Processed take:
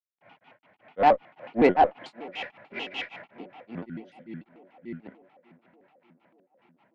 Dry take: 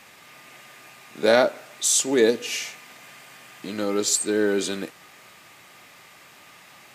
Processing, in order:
source passing by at 0:02.09, 13 m/s, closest 5.1 metres
gain on a spectral selection 0:04.05–0:04.72, 320–1,600 Hz −26 dB
in parallel at +2 dB: brickwall limiter −18 dBFS, peak gain reduction 10.5 dB
on the sum: granular cloud 217 ms, grains 5.2 per second, spray 635 ms
bit reduction 11 bits
loudspeaker in its box 110–2,300 Hz, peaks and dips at 220 Hz +4 dB, 470 Hz −7 dB, 710 Hz +10 dB, 1,400 Hz −8 dB
on a send: tape delay 592 ms, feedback 74%, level −21.5 dB, low-pass 1,400 Hz
on the sum: harmonic generator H 6 −27 dB, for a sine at −6.5 dBFS
pitch modulation by a square or saw wave square 6.8 Hz, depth 250 cents

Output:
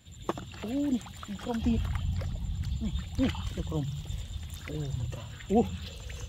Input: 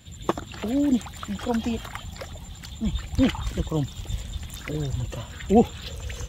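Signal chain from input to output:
0:01.61–0:02.77: bass and treble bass +14 dB, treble −2 dB
on a send: linear-phase brick-wall band-stop 190–2,600 Hz + convolution reverb RT60 0.80 s, pre-delay 47 ms, DRR 6 dB
on the sum: level −7.5 dB

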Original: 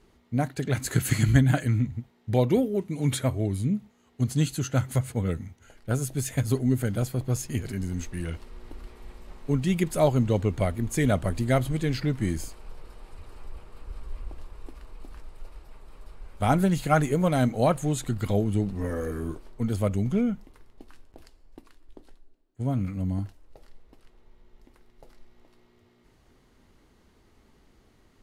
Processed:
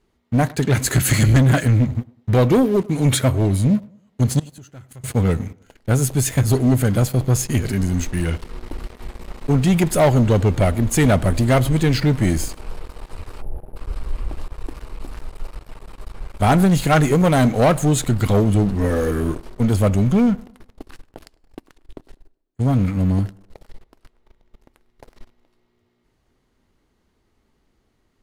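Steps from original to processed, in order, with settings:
0:13.42–0:13.76: gain on a spectral selection 890–9,500 Hz −30 dB
leveller curve on the samples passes 3
0:04.39–0:05.04: gate with flip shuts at −15 dBFS, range −24 dB
tape delay 102 ms, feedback 42%, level −20.5 dB, low-pass 1,700 Hz

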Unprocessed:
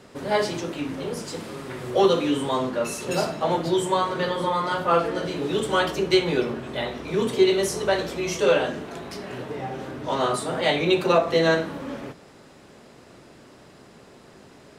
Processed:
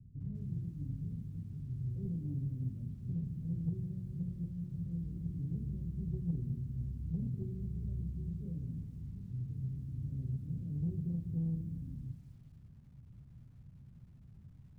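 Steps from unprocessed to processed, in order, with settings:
inverse Chebyshev low-pass filter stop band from 780 Hz, stop band 80 dB
in parallel at −6.5 dB: soft clipping −38 dBFS, distortion −16 dB
on the sum: feedback echo at a low word length 200 ms, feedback 35%, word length 11 bits, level −13.5 dB
level +2.5 dB

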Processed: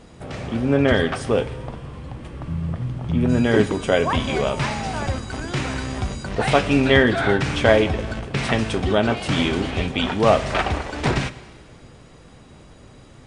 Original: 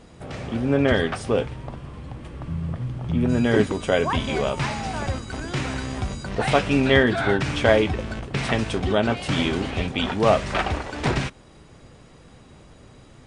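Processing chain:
four-comb reverb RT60 1.7 s, combs from 28 ms, DRR 14.5 dB
level +2 dB

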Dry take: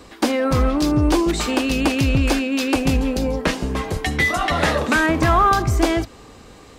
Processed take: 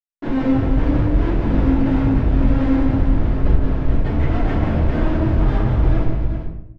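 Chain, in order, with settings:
low-shelf EQ 200 Hz +10.5 dB
downward compressor 12 to 1, threshold −19 dBFS, peak gain reduction 14.5 dB
flanger 0.75 Hz, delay 9.1 ms, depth 1.6 ms, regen −72%
comparator with hysteresis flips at −27.5 dBFS
head-to-tape spacing loss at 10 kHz 38 dB
multi-tap delay 175/388 ms −7/−8 dB
rectangular room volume 150 cubic metres, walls mixed, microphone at 2.9 metres
level −2 dB

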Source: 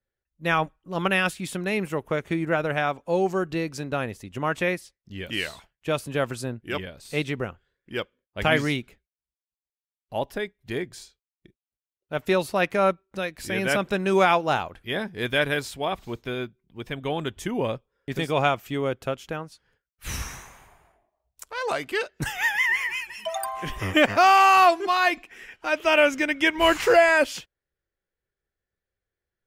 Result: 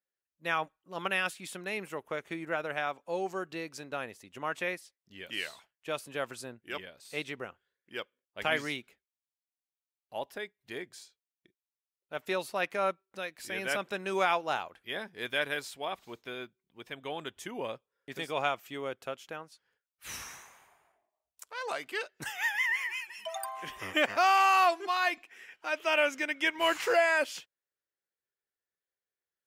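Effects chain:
high-pass filter 560 Hz 6 dB per octave
level −6.5 dB

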